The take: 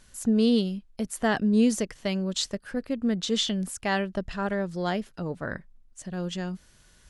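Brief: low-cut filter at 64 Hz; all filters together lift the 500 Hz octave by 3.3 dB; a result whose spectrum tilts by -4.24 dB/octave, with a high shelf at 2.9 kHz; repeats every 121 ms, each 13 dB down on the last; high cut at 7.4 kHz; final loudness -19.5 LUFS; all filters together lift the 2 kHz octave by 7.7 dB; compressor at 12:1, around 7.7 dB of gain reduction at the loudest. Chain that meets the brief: high-pass 64 Hz; low-pass 7.4 kHz; peaking EQ 500 Hz +3.5 dB; peaking EQ 2 kHz +8 dB; treble shelf 2.9 kHz +3.5 dB; compression 12:1, threshold -23 dBFS; feedback delay 121 ms, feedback 22%, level -13 dB; trim +10 dB

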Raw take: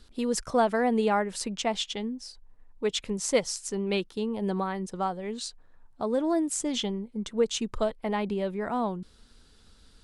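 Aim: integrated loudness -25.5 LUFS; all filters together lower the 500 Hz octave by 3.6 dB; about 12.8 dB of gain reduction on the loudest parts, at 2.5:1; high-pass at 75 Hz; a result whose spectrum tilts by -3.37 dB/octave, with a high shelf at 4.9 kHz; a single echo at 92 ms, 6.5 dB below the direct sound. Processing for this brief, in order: high-pass 75 Hz; peaking EQ 500 Hz -4.5 dB; treble shelf 4.9 kHz +3.5 dB; compression 2.5:1, threshold -41 dBFS; delay 92 ms -6.5 dB; trim +13.5 dB

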